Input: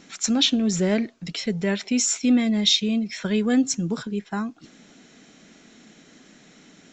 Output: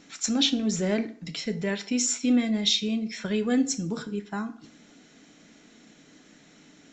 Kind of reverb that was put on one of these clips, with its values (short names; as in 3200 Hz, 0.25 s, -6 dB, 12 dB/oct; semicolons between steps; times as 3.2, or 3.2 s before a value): FDN reverb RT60 0.52 s, low-frequency decay 1×, high-frequency decay 0.75×, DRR 8.5 dB; gain -4 dB